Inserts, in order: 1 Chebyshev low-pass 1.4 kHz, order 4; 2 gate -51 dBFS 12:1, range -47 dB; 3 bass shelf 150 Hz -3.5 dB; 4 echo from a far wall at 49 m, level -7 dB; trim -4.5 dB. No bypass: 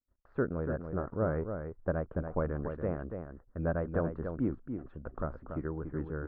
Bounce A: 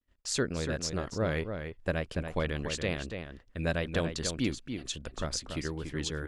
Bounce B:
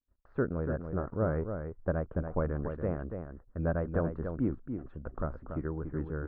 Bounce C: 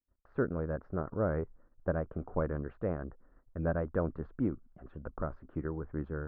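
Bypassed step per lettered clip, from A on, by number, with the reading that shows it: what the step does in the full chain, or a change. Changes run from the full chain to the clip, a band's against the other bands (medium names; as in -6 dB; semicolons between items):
1, 2 kHz band +8.0 dB; 3, 125 Hz band +2.0 dB; 4, echo-to-direct -8.0 dB to none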